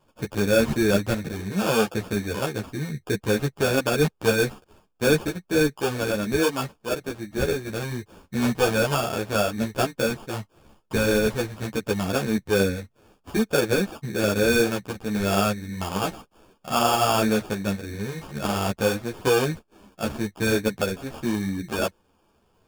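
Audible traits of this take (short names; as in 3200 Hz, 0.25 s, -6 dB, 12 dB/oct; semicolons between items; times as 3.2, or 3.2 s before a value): aliases and images of a low sample rate 2000 Hz, jitter 0%; a shimmering, thickened sound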